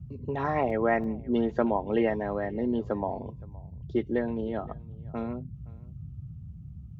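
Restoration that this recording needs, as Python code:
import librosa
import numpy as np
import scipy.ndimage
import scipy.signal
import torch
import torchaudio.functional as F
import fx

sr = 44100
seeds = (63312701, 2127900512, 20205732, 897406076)

y = fx.fix_interpolate(x, sr, at_s=(0.7, 1.04), length_ms=1.2)
y = fx.noise_reduce(y, sr, print_start_s=6.48, print_end_s=6.98, reduce_db=30.0)
y = fx.fix_echo_inverse(y, sr, delay_ms=518, level_db=-23.5)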